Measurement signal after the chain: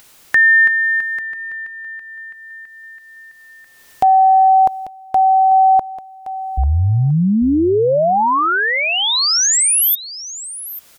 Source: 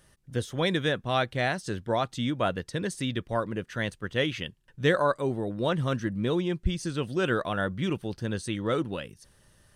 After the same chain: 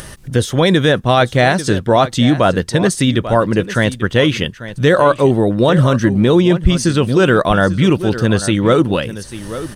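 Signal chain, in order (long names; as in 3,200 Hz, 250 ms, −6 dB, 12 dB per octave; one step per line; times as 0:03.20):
dynamic equaliser 2,400 Hz, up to −4 dB, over −39 dBFS, Q 0.89
upward compression, threshold −41 dBFS
on a send: single-tap delay 842 ms −15 dB
on the sum: boost into a limiter +18.5 dB
level −1 dB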